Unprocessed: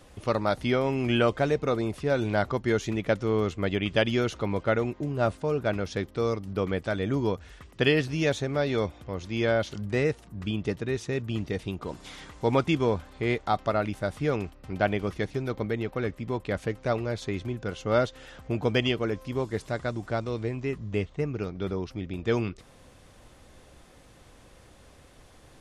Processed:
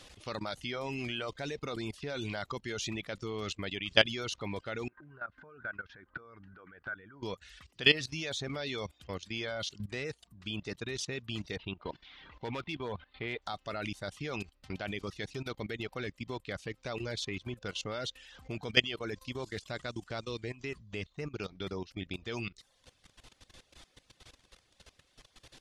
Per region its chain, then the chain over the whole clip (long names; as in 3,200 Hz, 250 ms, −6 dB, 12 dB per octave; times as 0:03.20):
0:04.88–0:07.23: downward compressor 12 to 1, threshold −39 dBFS + low-pass with resonance 1,500 Hz, resonance Q 8.6 + one half of a high-frequency compander encoder only
0:11.56–0:13.42: low-pass filter 3,500 Hz 24 dB per octave + parametric band 920 Hz +2.5 dB 0.4 octaves + gain into a clipping stage and back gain 16.5 dB
whole clip: parametric band 4,100 Hz +13.5 dB 2.3 octaves; reverb reduction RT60 0.62 s; output level in coarse steps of 17 dB; level −3 dB